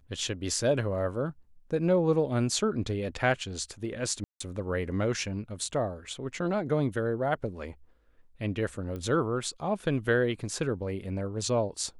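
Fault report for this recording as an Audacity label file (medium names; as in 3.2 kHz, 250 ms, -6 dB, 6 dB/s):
4.240000	4.400000	dropout 164 ms
8.960000	8.960000	pop -26 dBFS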